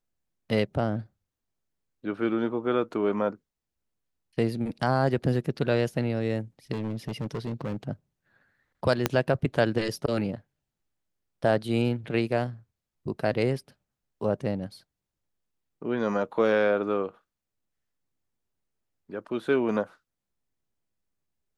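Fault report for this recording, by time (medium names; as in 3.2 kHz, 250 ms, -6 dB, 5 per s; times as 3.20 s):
6.72–7.76 s: clipped -27 dBFS
9.06 s: pop -7 dBFS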